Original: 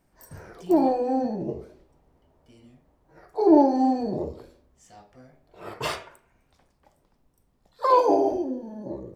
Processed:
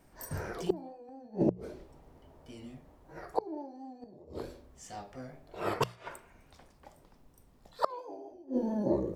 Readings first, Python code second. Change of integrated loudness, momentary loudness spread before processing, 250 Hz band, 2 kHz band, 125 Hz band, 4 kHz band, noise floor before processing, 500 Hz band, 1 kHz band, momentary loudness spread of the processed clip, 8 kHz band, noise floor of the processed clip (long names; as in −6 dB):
−13.5 dB, 19 LU, −11.5 dB, −5.0 dB, +0.5 dB, −7.5 dB, −68 dBFS, −11.0 dB, −14.0 dB, 19 LU, can't be measured, −62 dBFS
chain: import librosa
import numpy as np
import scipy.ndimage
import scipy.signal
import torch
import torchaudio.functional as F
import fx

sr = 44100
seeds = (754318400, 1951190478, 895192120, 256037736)

y = fx.gate_flip(x, sr, shuts_db=-20.0, range_db=-31)
y = fx.hum_notches(y, sr, base_hz=60, count=3)
y = fx.vibrato(y, sr, rate_hz=4.5, depth_cents=34.0)
y = F.gain(torch.from_numpy(y), 6.0).numpy()